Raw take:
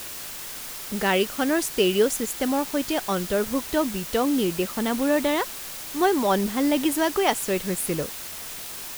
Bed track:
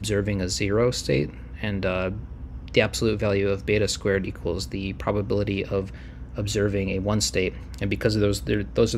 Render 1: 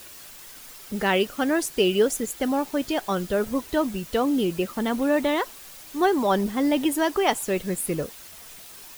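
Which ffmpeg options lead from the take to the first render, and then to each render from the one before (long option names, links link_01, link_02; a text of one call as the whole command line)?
ffmpeg -i in.wav -af "afftdn=noise_reduction=9:noise_floor=-36" out.wav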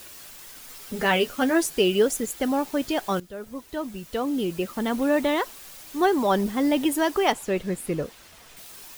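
ffmpeg -i in.wav -filter_complex "[0:a]asettb=1/sr,asplit=3[link_01][link_02][link_03];[link_01]atrim=end=0.694[link_04];[link_02]atrim=start=0.69:end=1.78,asetpts=PTS-STARTPTS,afade=type=in:duration=0.004:curve=qsin,afade=type=out:start_time=1.086:duration=0.004:curve=qsin,asplit=2[link_05][link_06];[link_06]adelay=12,volume=-5dB[link_07];[link_05][link_07]amix=inputs=2:normalize=0,atrim=end_sample=48069[link_08];[link_03]atrim=start=1.776[link_09];[link_04][link_08]acrossfade=duration=0.004:curve1=hsin:curve2=qsin[link_10];[link_10][link_09]acrossfade=duration=0.004:curve1=qsin:curve2=hsin,asettb=1/sr,asplit=3[link_11][link_12][link_13];[link_11]atrim=end=7.324[link_14];[link_12]atrim=start=7.32:end=8.57,asetpts=PTS-STARTPTS,afade=type=in:duration=0.004:curve=qsin,afade=type=out:start_time=1.246:duration=0.004:curve=qsin,highshelf=frequency=6400:gain=-11.5[link_15];[link_13]atrim=start=8.566[link_16];[link_14][link_15]acrossfade=duration=0.004:curve1=hsin:curve2=qsin[link_17];[link_17][link_16]acrossfade=duration=0.004:curve1=qsin:curve2=hsin,asplit=2[link_18][link_19];[link_18]atrim=end=3.2,asetpts=PTS-STARTPTS,afade=type=out:start_time=3.196:duration=0.004:curve=hsin:silence=0.149624[link_20];[link_19]atrim=start=3.2,asetpts=PTS-STARTPTS,afade=type=in:duration=1.83:silence=0.149624[link_21];[link_20][link_21]concat=n=2:v=0:a=1" out.wav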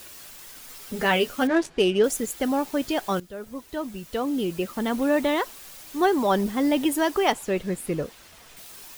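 ffmpeg -i in.wav -filter_complex "[0:a]asettb=1/sr,asplit=3[link_01][link_02][link_03];[link_01]atrim=end=1.474[link_04];[link_02]atrim=start=1.47:end=2.04,asetpts=PTS-STARTPTS,afade=type=in:duration=0.004:curve=qsin,afade=type=out:start_time=0.566:duration=0.004:curve=qsin,adynamicsmooth=sensitivity=2.5:basefreq=2100[link_05];[link_03]atrim=start=2.036[link_06];[link_04][link_05]acrossfade=duration=0.004:curve1=hsin:curve2=qsin[link_07];[link_07][link_06]acrossfade=duration=0.004:curve1=qsin:curve2=hsin" out.wav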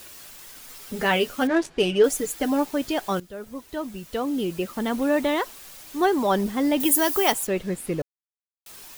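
ffmpeg -i in.wav -filter_complex "[0:a]asettb=1/sr,asplit=3[link_01][link_02][link_03];[link_01]atrim=end=1.824[link_04];[link_02]atrim=start=1.82:end=2.65,asetpts=PTS-STARTPTS,afade=type=in:duration=0.004:curve=qsin,afade=type=out:start_time=0.826:duration=0.004:curve=qsin,aecho=1:1:6.7:0.6,atrim=end_sample=36603[link_05];[link_03]atrim=start=2.646[link_06];[link_04][link_05]acrossfade=duration=0.004:curve1=hsin:curve2=qsin[link_07];[link_07][link_06]acrossfade=duration=0.004:curve1=qsin:curve2=hsin,asettb=1/sr,asplit=3[link_08][link_09][link_10];[link_08]atrim=end=6.804[link_11];[link_09]atrim=start=6.8:end=7.47,asetpts=PTS-STARTPTS,afade=type=in:duration=0.004:curve=qsin,afade=type=out:start_time=0.666:duration=0.004:curve=qsin,aemphasis=mode=production:type=50fm[link_12];[link_10]atrim=start=7.466[link_13];[link_11][link_12]acrossfade=duration=0.004:curve1=hsin:curve2=qsin[link_14];[link_14][link_13]acrossfade=duration=0.004:curve1=qsin:curve2=hsin,asplit=3[link_15][link_16][link_17];[link_15]atrim=end=8.02,asetpts=PTS-STARTPTS,afade=type=out:start_time=8.016:duration=0.004:curve=hsin[link_18];[link_16]atrim=start=8.02:end=8.66,asetpts=PTS-STARTPTS,volume=0[link_19];[link_17]atrim=start=8.66,asetpts=PTS-STARTPTS,afade=type=in:duration=0.004:curve=hsin[link_20];[link_18][link_19][link_20]concat=n=3:v=0:a=1" out.wav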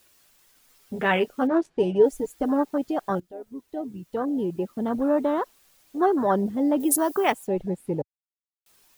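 ffmpeg -i in.wav -af "afwtdn=0.0501" out.wav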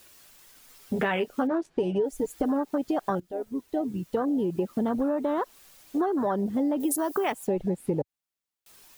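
ffmpeg -i in.wav -filter_complex "[0:a]asplit=2[link_01][link_02];[link_02]alimiter=limit=-16.5dB:level=0:latency=1,volume=0dB[link_03];[link_01][link_03]amix=inputs=2:normalize=0,acompressor=threshold=-23dB:ratio=10" out.wav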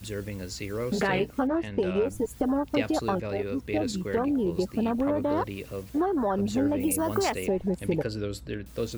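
ffmpeg -i in.wav -i bed.wav -filter_complex "[1:a]volume=-10.5dB[link_01];[0:a][link_01]amix=inputs=2:normalize=0" out.wav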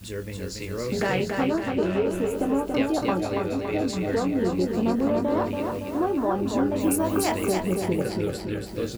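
ffmpeg -i in.wav -filter_complex "[0:a]asplit=2[link_01][link_02];[link_02]adelay=22,volume=-7.5dB[link_03];[link_01][link_03]amix=inputs=2:normalize=0,aecho=1:1:282|564|846|1128|1410|1692|1974|2256:0.596|0.334|0.187|0.105|0.0586|0.0328|0.0184|0.0103" out.wav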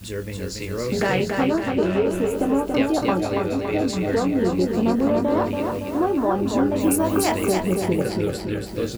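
ffmpeg -i in.wav -af "volume=3.5dB" out.wav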